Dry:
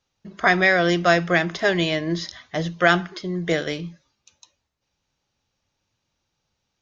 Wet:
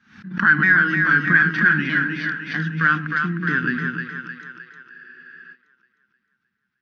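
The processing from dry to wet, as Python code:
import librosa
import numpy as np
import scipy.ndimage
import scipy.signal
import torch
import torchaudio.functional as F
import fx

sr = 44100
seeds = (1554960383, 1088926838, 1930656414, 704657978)

p1 = fx.pitch_ramps(x, sr, semitones=-3.5, every_ms=632)
p2 = fx.leveller(p1, sr, passes=1)
p3 = fx.over_compress(p2, sr, threshold_db=-20.0, ratio=-1.0)
p4 = p2 + (p3 * 10.0 ** (-3.0 / 20.0))
p5 = fx.double_bandpass(p4, sr, hz=580.0, octaves=2.9)
p6 = p5 + fx.echo_split(p5, sr, split_hz=420.0, low_ms=155, high_ms=308, feedback_pct=52, wet_db=-5, dry=0)
p7 = fx.spec_freeze(p6, sr, seeds[0], at_s=4.93, hold_s=0.6)
p8 = fx.pre_swell(p7, sr, db_per_s=120.0)
y = p8 * 10.0 ** (5.0 / 20.0)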